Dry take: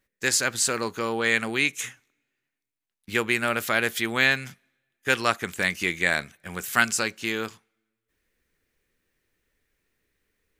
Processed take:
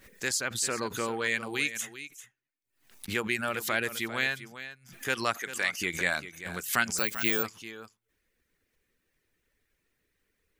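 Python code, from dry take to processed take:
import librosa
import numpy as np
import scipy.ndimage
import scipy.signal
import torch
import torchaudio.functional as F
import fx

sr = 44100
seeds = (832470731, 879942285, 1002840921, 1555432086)

p1 = fx.weighting(x, sr, curve='A', at=(5.37, 5.78))
p2 = fx.dereverb_blind(p1, sr, rt60_s=0.57)
p3 = fx.high_shelf(p2, sr, hz=6000.0, db=7.0, at=(1.47, 1.87))
p4 = fx.rider(p3, sr, range_db=5, speed_s=0.5)
p5 = p4 + fx.echo_single(p4, sr, ms=394, db=-13.0, dry=0)
p6 = fx.resample_bad(p5, sr, factor=2, down='filtered', up='zero_stuff', at=(6.98, 7.43))
p7 = fx.pre_swell(p6, sr, db_per_s=120.0)
y = p7 * 10.0 ** (-5.5 / 20.0)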